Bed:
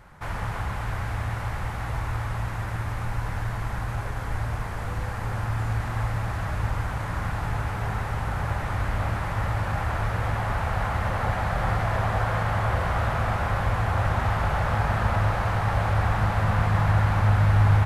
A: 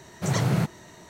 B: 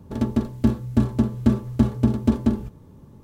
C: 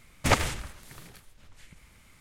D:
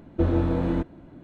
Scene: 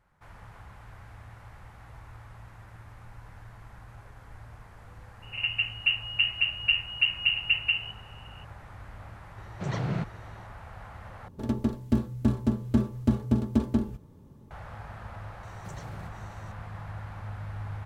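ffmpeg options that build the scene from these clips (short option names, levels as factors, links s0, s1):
-filter_complex "[2:a]asplit=2[s0][s1];[1:a]asplit=2[s2][s3];[0:a]volume=0.119[s4];[s0]lowpass=f=2600:t=q:w=0.5098,lowpass=f=2600:t=q:w=0.6013,lowpass=f=2600:t=q:w=0.9,lowpass=f=2600:t=q:w=2.563,afreqshift=-3000[s5];[s2]lowpass=3600[s6];[s3]acompressor=threshold=0.02:ratio=6:attack=3.2:release=140:knee=1:detection=peak[s7];[s4]asplit=2[s8][s9];[s8]atrim=end=11.284[s10];[s1]atrim=end=3.23,asetpts=PTS-STARTPTS,volume=0.531[s11];[s9]atrim=start=14.506[s12];[s5]atrim=end=3.23,asetpts=PTS-STARTPTS,volume=0.447,afade=t=in:d=0.004:c=hsin,afade=t=out:st=3.226:d=0.004:c=hsin,adelay=5220[s13];[s6]atrim=end=1.09,asetpts=PTS-STARTPTS,volume=0.473,afade=t=in:d=0.004:c=hsin,afade=t=out:st=1.086:d=0.004:c=hsin,adelay=413658S[s14];[s7]atrim=end=1.09,asetpts=PTS-STARTPTS,volume=0.398,afade=t=in:d=0.004:c=hsin,afade=t=out:st=1.086:d=0.004:c=hsin,adelay=15430[s15];[s10][s11]acrossfade=d=0.004:c1=hsin:c2=hsin[s16];[s16][s12]acrossfade=d=0.004:c1=hsin:c2=hsin[s17];[s17][s13][s14][s15]amix=inputs=4:normalize=0"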